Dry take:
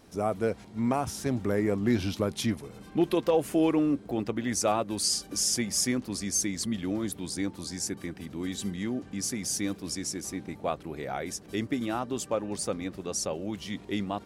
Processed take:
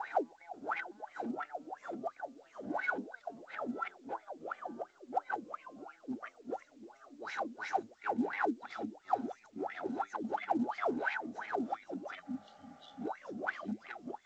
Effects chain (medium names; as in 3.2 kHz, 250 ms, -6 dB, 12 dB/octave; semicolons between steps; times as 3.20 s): pitch bend over the whole clip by +7.5 st ending unshifted; inverted gate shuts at -24 dBFS, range -39 dB; flange 1.5 Hz, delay 8.2 ms, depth 1.7 ms, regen +71%; sine folder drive 17 dB, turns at -25.5 dBFS; small resonant body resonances 820/1500/3900 Hz, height 17 dB, ringing for 30 ms; ever faster or slower copies 536 ms, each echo -2 st, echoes 3, each echo -6 dB; saturation -27 dBFS, distortion -8 dB; wah-wah 2.9 Hz 230–2200 Hz, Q 13; spectral replace 12.28–12.99 s, 280–2800 Hz before; trim +10 dB; A-law 128 kbps 16 kHz